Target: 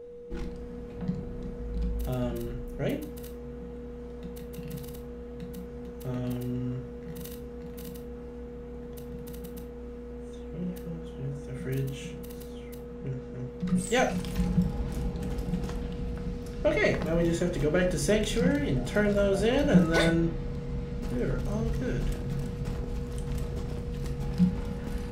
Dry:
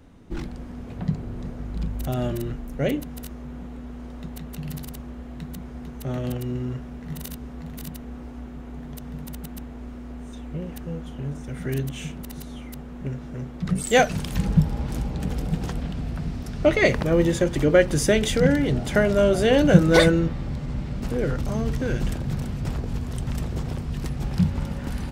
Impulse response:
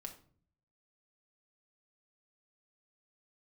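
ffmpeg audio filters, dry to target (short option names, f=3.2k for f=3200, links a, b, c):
-filter_complex "[0:a]acontrast=32,aeval=exprs='val(0)+0.0398*sin(2*PI*480*n/s)':c=same,asettb=1/sr,asplit=3[a][b][c];[a]atrim=end=12.944[d];[b]atrim=start=12.94:end=13.48,asetpts=PTS-STARTPTS,afade=t=in:d=0.004:c=qsin,afade=t=out:st=0.536:d=0.004:c=qsin,lowpass=10k[e];[c]atrim=start=13.476[f];[d][e]acrossfade=d=0.004:c1=hsin:c2=qsin[g];[g][f]acrossfade=d=0.004:c1=qsin:c2=hsin[h];[1:a]atrim=start_sample=2205,afade=t=out:st=0.17:d=0.01,atrim=end_sample=7938[i];[h][i]afir=irnorm=-1:irlink=0,volume=-7dB"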